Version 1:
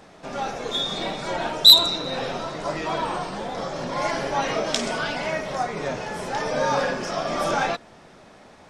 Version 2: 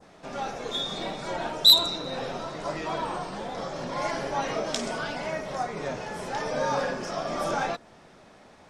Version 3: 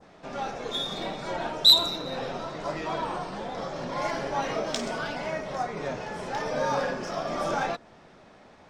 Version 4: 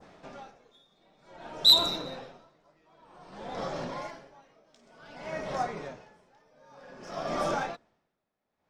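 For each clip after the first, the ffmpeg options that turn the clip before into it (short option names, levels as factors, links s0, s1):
-af "adynamicequalizer=threshold=0.0158:dfrequency=2800:dqfactor=0.78:tfrequency=2800:tqfactor=0.78:attack=5:release=100:ratio=0.375:range=2:mode=cutabove:tftype=bell,volume=0.631"
-af "adynamicsmooth=sensitivity=7:basefreq=7300"
-af "aeval=exprs='val(0)*pow(10,-33*(0.5-0.5*cos(2*PI*0.54*n/s))/20)':c=same"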